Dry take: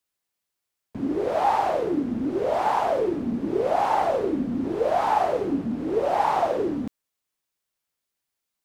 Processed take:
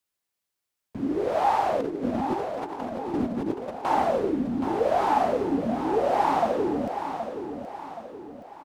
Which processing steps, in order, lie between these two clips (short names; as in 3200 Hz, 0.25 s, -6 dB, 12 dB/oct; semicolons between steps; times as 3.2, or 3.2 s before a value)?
1.8–3.85 negative-ratio compressor -29 dBFS, ratio -0.5; feedback echo 0.773 s, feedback 45%, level -8.5 dB; gain -1 dB